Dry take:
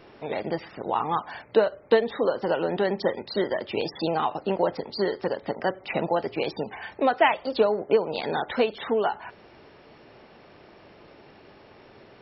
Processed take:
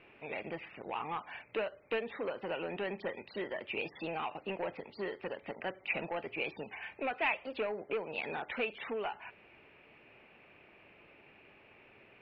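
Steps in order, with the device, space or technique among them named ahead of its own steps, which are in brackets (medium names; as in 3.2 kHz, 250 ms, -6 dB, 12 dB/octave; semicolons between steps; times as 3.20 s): overdriven synthesiser ladder filter (saturation -17.5 dBFS, distortion -13 dB; four-pole ladder low-pass 2.7 kHz, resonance 75%)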